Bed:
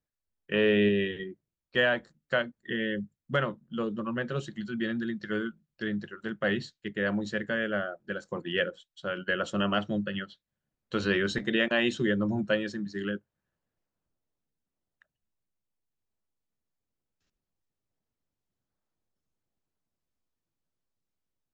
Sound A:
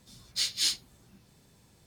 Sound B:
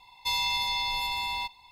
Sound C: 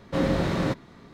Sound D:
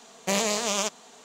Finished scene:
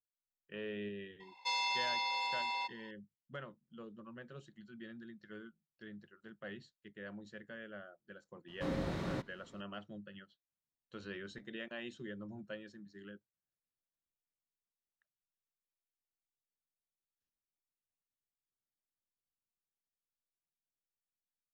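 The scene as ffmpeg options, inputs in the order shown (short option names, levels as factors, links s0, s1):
-filter_complex "[0:a]volume=0.112[s0];[2:a]highpass=f=310:w=0.5412,highpass=f=310:w=1.3066,equalizer=f=540:t=q:w=4:g=7,equalizer=f=1500:t=q:w=4:g=9,equalizer=f=3700:t=q:w=4:g=-6,lowpass=f=6700:w=0.5412,lowpass=f=6700:w=1.3066,atrim=end=1.71,asetpts=PTS-STARTPTS,volume=0.531,afade=t=in:d=0.004:c=hsin,afade=t=out:st=1.706:d=0.004:c=hsin,adelay=1200[s1];[3:a]atrim=end=1.13,asetpts=PTS-STARTPTS,volume=0.224,afade=t=in:d=0.004:c=hsin,afade=t=out:st=1.126:d=0.004:c=hsin,adelay=8480[s2];[s0][s1][s2]amix=inputs=3:normalize=0"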